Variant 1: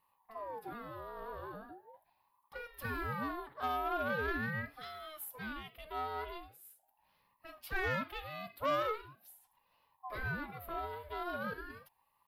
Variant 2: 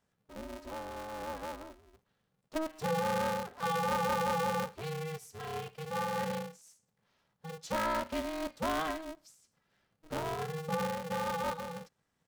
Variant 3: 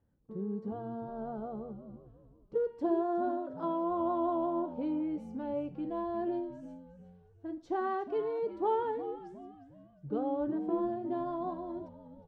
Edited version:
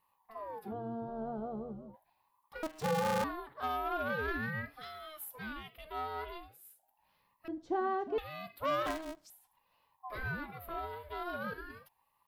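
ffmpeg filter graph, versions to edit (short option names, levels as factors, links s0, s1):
-filter_complex "[2:a]asplit=2[s0][s1];[1:a]asplit=2[s2][s3];[0:a]asplit=5[s4][s5][s6][s7][s8];[s4]atrim=end=0.74[s9];[s0]atrim=start=0.64:end=1.96[s10];[s5]atrim=start=1.86:end=2.632[s11];[s2]atrim=start=2.628:end=3.242[s12];[s6]atrim=start=3.238:end=7.482[s13];[s1]atrim=start=7.478:end=8.182[s14];[s7]atrim=start=8.178:end=8.862[s15];[s3]atrim=start=8.858:end=9.302[s16];[s8]atrim=start=9.298[s17];[s9][s10]acrossfade=d=0.1:c1=tri:c2=tri[s18];[s18][s11]acrossfade=d=0.1:c1=tri:c2=tri[s19];[s19][s12]acrossfade=d=0.004:c1=hsin:c2=hsin[s20];[s20][s13]acrossfade=d=0.004:c1=hsin:c2=hsin[s21];[s21][s14]acrossfade=d=0.004:c1=hsin:c2=hsin[s22];[s22][s15]acrossfade=d=0.004:c1=hsin:c2=hsin[s23];[s23][s16]acrossfade=d=0.004:c1=hsin:c2=hsin[s24];[s24][s17]acrossfade=d=0.004:c1=hsin:c2=hsin"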